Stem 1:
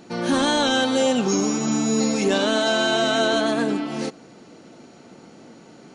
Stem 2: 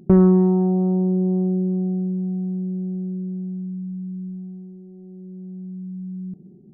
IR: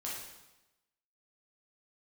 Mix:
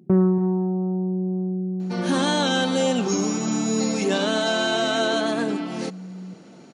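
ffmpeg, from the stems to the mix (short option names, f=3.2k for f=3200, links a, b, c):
-filter_complex "[0:a]adelay=1800,volume=-2dB[a];[1:a]volume=-5dB,asplit=3[b][c][d];[c]volume=-15.5dB[e];[d]volume=-15dB[f];[2:a]atrim=start_sample=2205[g];[e][g]afir=irnorm=-1:irlink=0[h];[f]aecho=0:1:282:1[i];[a][b][h][i]amix=inputs=4:normalize=0,highpass=120"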